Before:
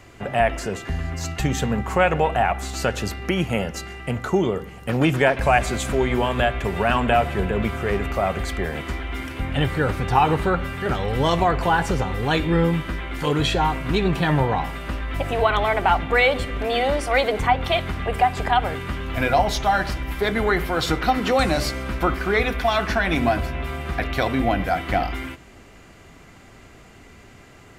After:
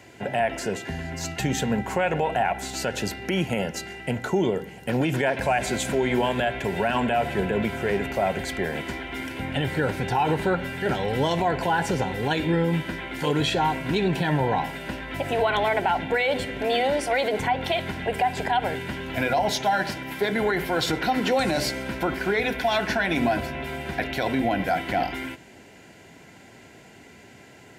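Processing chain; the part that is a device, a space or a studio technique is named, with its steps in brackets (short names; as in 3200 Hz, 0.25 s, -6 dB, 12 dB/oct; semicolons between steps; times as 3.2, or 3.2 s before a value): 19.49–20.41 HPF 84 Hz 24 dB/oct; PA system with an anti-feedback notch (HPF 130 Hz 12 dB/oct; Butterworth band-stop 1200 Hz, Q 4.5; limiter -14 dBFS, peak gain reduction 8 dB)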